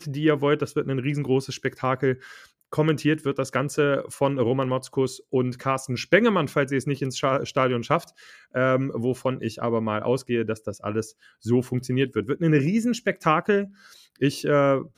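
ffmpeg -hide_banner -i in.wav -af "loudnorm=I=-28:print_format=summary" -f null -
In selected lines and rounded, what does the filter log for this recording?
Input Integrated:    -24.1 LUFS
Input True Peak:      -5.3 dBTP
Input LRA:             2.9 LU
Input Threshold:     -34.4 LUFS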